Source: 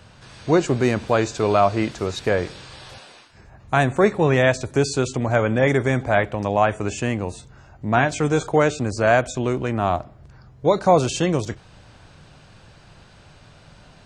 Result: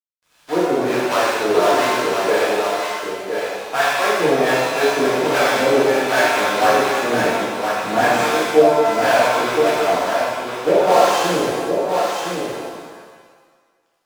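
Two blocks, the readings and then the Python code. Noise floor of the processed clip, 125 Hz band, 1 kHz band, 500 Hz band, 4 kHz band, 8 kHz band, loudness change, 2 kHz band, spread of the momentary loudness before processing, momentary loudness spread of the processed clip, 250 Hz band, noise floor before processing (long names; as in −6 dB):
−62 dBFS, −11.0 dB, +6.0 dB, +4.5 dB, +9.0 dB, +5.5 dB, +3.0 dB, +5.5 dB, 10 LU, 9 LU, 0.0 dB, −49 dBFS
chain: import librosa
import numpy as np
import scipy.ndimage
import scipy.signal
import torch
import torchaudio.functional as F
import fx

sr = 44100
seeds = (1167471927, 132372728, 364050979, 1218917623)

p1 = fx.block_float(x, sr, bits=3)
p2 = scipy.signal.sosfilt(scipy.signal.cheby1(2, 1.0, 380.0, 'highpass', fs=sr, output='sos'), p1)
p3 = fx.high_shelf(p2, sr, hz=6500.0, db=-11.5)
p4 = fx.rider(p3, sr, range_db=10, speed_s=0.5)
p5 = p3 + (p4 * librosa.db_to_amplitude(-0.5))
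p6 = fx.harmonic_tremolo(p5, sr, hz=1.4, depth_pct=100, crossover_hz=640.0)
p7 = np.sign(p6) * np.maximum(np.abs(p6) - 10.0 ** (-40.5 / 20.0), 0.0)
p8 = p7 + fx.echo_single(p7, sr, ms=1014, db=-5.5, dry=0)
p9 = fx.rev_shimmer(p8, sr, seeds[0], rt60_s=1.6, semitones=7, shimmer_db=-8, drr_db=-10.0)
y = p9 * librosa.db_to_amplitude(-7.0)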